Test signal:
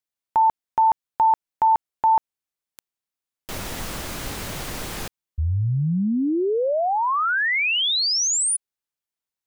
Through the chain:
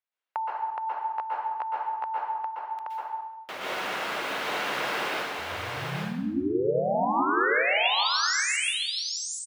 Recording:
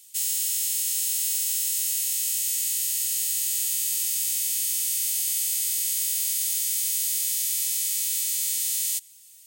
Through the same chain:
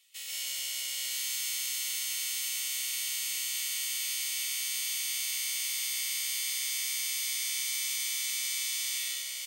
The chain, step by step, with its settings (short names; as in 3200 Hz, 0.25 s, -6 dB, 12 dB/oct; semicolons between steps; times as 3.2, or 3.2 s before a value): HPF 250 Hz 12 dB/oct; three-band isolator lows -12 dB, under 510 Hz, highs -20 dB, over 3500 Hz; compressor 4:1, threshold -34 dBFS; on a send: echo 0.825 s -3 dB; on the sum: plate-style reverb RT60 0.85 s, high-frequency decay 0.9×, pre-delay 0.11 s, DRR -5.5 dB; gain +1 dB